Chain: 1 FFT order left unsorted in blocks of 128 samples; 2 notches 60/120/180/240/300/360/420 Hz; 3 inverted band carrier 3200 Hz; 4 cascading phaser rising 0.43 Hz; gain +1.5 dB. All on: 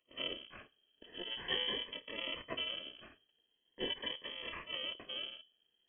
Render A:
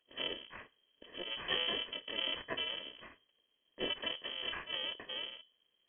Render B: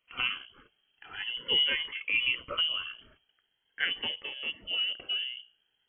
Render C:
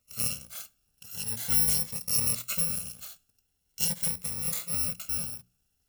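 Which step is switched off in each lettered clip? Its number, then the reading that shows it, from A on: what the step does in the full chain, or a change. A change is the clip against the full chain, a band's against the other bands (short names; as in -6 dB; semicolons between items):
4, 125 Hz band -2.0 dB; 1, 2 kHz band +11.5 dB; 3, 125 Hz band +20.5 dB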